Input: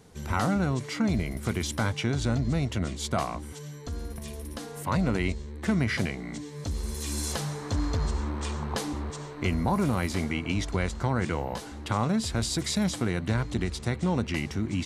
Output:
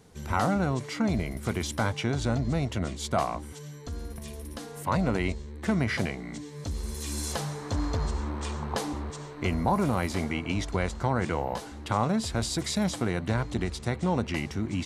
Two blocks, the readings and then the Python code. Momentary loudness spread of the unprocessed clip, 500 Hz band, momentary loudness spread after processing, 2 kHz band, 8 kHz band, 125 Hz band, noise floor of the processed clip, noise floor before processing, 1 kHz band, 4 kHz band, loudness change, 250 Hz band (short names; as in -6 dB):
11 LU, +1.5 dB, 12 LU, -0.5 dB, -1.5 dB, -1.5 dB, -42 dBFS, -41 dBFS, +2.5 dB, -1.5 dB, -0.5 dB, -1.0 dB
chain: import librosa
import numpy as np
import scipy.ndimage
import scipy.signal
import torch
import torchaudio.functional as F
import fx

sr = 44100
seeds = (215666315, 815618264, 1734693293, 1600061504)

y = fx.dynamic_eq(x, sr, hz=730.0, q=0.91, threshold_db=-39.0, ratio=4.0, max_db=5)
y = y * 10.0 ** (-1.5 / 20.0)